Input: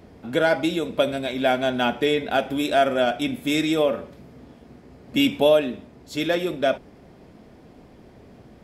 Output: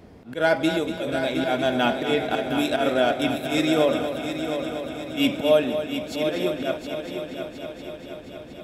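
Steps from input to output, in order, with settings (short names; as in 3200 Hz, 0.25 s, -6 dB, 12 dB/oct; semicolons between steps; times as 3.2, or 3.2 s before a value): auto swell 0.115 s; multi-head echo 0.238 s, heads first and third, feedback 69%, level -9.5 dB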